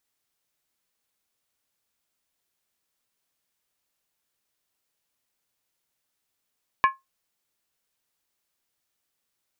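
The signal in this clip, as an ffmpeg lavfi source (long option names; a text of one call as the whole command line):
ffmpeg -f lavfi -i "aevalsrc='0.266*pow(10,-3*t/0.18)*sin(2*PI*1070*t)+0.126*pow(10,-3*t/0.143)*sin(2*PI*1705.6*t)+0.0596*pow(10,-3*t/0.123)*sin(2*PI*2285.5*t)+0.0282*pow(10,-3*t/0.119)*sin(2*PI*2456.7*t)+0.0133*pow(10,-3*t/0.111)*sin(2*PI*2838.7*t)':duration=0.63:sample_rate=44100" out.wav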